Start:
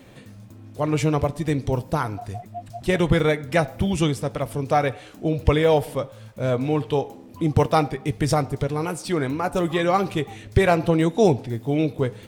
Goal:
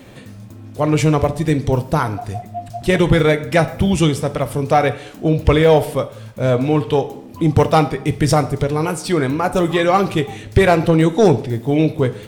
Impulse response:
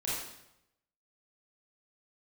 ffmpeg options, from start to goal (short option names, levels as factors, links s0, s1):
-filter_complex "[0:a]acontrast=75,asplit=2[s0][s1];[1:a]atrim=start_sample=2205,asetrate=57330,aresample=44100[s2];[s1][s2]afir=irnorm=-1:irlink=0,volume=0.178[s3];[s0][s3]amix=inputs=2:normalize=0,volume=0.891"